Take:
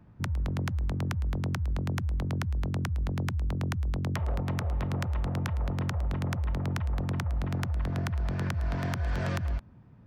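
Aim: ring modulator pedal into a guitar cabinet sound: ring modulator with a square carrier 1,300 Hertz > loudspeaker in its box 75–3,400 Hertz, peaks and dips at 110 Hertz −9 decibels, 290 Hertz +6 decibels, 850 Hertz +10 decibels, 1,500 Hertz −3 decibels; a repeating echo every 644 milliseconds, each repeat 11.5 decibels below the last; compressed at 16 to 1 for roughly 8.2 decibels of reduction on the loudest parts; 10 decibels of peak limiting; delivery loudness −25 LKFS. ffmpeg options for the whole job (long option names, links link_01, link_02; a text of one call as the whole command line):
ffmpeg -i in.wav -af "acompressor=threshold=-34dB:ratio=16,alimiter=level_in=12.5dB:limit=-24dB:level=0:latency=1,volume=-12.5dB,aecho=1:1:644|1288|1932:0.266|0.0718|0.0194,aeval=exprs='val(0)*sgn(sin(2*PI*1300*n/s))':channel_layout=same,highpass=75,equalizer=frequency=110:width_type=q:width=4:gain=-9,equalizer=frequency=290:width_type=q:width=4:gain=6,equalizer=frequency=850:width_type=q:width=4:gain=10,equalizer=frequency=1500:width_type=q:width=4:gain=-3,lowpass=frequency=3400:width=0.5412,lowpass=frequency=3400:width=1.3066,volume=16.5dB" out.wav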